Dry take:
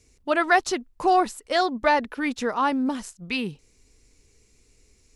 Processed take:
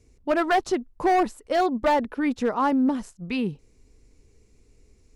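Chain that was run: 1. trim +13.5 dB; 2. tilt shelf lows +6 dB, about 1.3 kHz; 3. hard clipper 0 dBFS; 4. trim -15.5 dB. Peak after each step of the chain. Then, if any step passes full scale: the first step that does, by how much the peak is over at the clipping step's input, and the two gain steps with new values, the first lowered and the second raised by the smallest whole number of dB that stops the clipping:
+7.0 dBFS, +9.0 dBFS, 0.0 dBFS, -15.5 dBFS; step 1, 9.0 dB; step 1 +4.5 dB, step 4 -6.5 dB

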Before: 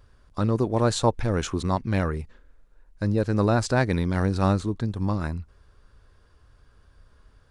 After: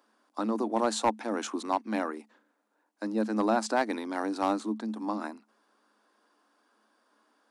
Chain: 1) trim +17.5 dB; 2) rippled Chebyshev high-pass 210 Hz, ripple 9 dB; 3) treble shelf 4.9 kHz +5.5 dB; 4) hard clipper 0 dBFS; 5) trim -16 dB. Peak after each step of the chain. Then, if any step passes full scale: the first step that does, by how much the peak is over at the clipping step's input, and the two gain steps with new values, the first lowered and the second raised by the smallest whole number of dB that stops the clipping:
+10.5 dBFS, +7.0 dBFS, +7.0 dBFS, 0.0 dBFS, -16.0 dBFS; step 1, 7.0 dB; step 1 +10.5 dB, step 5 -9 dB

